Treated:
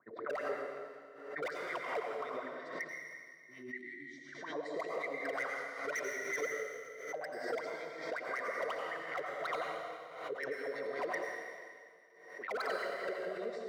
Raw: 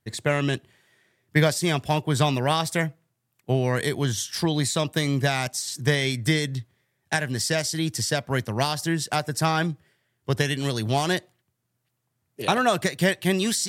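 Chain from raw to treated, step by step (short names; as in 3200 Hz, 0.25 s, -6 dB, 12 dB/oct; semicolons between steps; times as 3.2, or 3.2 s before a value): transient shaper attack -5 dB, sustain +7 dB; Chebyshev band-pass 230–5000 Hz, order 2; low-pass opened by the level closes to 530 Hz, open at -24.5 dBFS; bell 2900 Hz -13.5 dB 0.35 oct; vocal rider 0.5 s; spectral delete 2.48–4.17, 380–1800 Hz; wah 5.4 Hz 440–2100 Hz, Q 17; wavefolder -34 dBFS; notch comb 840 Hz; reverb RT60 2.0 s, pre-delay 78 ms, DRR -1 dB; backwards sustainer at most 65 dB/s; gain +3 dB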